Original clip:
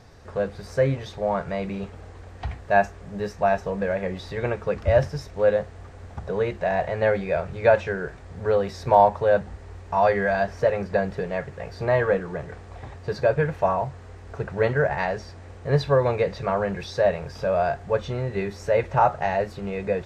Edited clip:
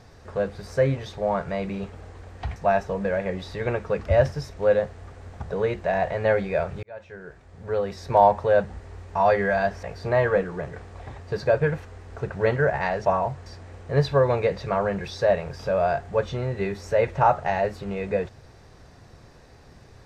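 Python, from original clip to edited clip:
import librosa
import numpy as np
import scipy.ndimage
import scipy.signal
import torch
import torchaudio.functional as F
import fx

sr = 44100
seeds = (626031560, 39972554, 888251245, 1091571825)

y = fx.edit(x, sr, fx.cut(start_s=2.56, length_s=0.77),
    fx.fade_in_span(start_s=7.6, length_s=1.51),
    fx.cut(start_s=10.6, length_s=0.99),
    fx.move(start_s=13.61, length_s=0.41, to_s=15.22), tone=tone)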